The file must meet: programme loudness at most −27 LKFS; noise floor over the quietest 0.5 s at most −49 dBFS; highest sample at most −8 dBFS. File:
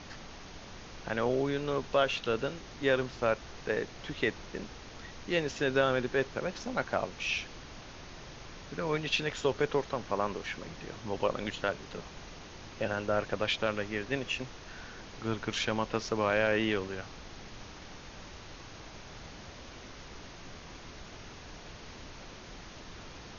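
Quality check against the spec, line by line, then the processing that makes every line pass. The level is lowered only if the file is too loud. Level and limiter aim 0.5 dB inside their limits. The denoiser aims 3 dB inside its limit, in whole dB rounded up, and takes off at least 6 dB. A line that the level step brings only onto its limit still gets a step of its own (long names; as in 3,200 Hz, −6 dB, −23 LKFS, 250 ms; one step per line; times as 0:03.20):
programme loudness −32.5 LKFS: in spec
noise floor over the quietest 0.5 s −47 dBFS: out of spec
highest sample −12.5 dBFS: in spec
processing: broadband denoise 6 dB, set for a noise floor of −47 dBFS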